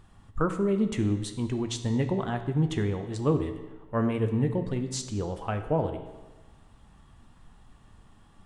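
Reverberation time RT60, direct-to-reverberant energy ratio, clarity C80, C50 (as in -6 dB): 1.2 s, 7.0 dB, 11.0 dB, 9.0 dB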